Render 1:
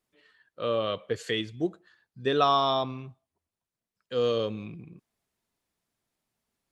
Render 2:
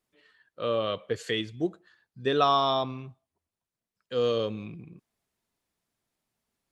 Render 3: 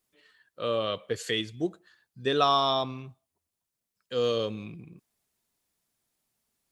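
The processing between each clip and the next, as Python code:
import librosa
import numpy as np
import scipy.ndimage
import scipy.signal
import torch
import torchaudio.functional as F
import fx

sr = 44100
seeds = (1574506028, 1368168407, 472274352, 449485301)

y1 = x
y2 = fx.high_shelf(y1, sr, hz=4800.0, db=9.5)
y2 = y2 * librosa.db_to_amplitude(-1.0)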